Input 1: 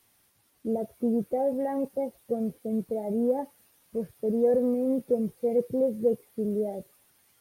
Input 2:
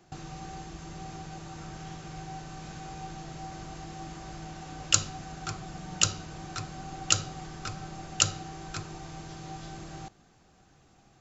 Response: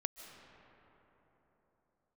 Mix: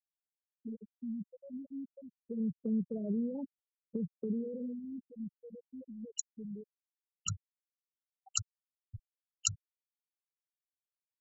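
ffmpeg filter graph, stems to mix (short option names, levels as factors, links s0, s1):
-filter_complex "[0:a]alimiter=level_in=1.19:limit=0.0631:level=0:latency=1:release=73,volume=0.841,acrossover=split=400|3000[s0][s1][s2];[s1]acompressor=threshold=0.00282:ratio=3[s3];[s0][s3][s2]amix=inputs=3:normalize=0,afade=t=in:st=2.06:d=0.62:silence=0.316228,afade=t=out:st=4.22:d=0.53:silence=0.251189,asplit=3[s4][s5][s6];[s5]volume=0.282[s7];[1:a]highshelf=f=6300:g=7.5,acrossover=split=1800[s8][s9];[s8]aeval=exprs='val(0)*(1-0.7/2+0.7/2*cos(2*PI*1.3*n/s))':c=same[s10];[s9]aeval=exprs='val(0)*(1-0.7/2-0.7/2*cos(2*PI*1.3*n/s))':c=same[s11];[s10][s11]amix=inputs=2:normalize=0,adelay=1250,volume=0.398[s12];[s6]apad=whole_len=549389[s13];[s12][s13]sidechaincompress=threshold=0.00158:ratio=6:attack=16:release=390[s14];[2:a]atrim=start_sample=2205[s15];[s7][s15]afir=irnorm=-1:irlink=0[s16];[s4][s14][s16]amix=inputs=3:normalize=0,afftfilt=real='re*gte(hypot(re,im),0.0501)':imag='im*gte(hypot(re,im),0.0501)':win_size=1024:overlap=0.75,lowshelf=f=190:g=7.5,acrossover=split=200|3000[s17][s18][s19];[s18]acompressor=threshold=0.0141:ratio=6[s20];[s17][s20][s19]amix=inputs=3:normalize=0"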